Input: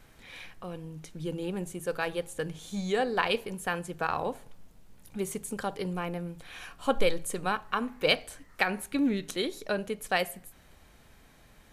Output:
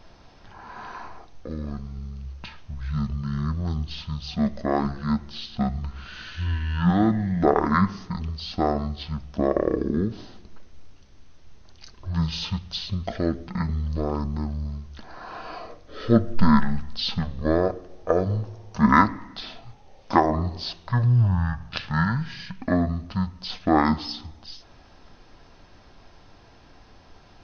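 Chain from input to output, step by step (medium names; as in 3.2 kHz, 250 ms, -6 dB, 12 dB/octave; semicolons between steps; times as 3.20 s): speed mistake 78 rpm record played at 33 rpm; trim +7 dB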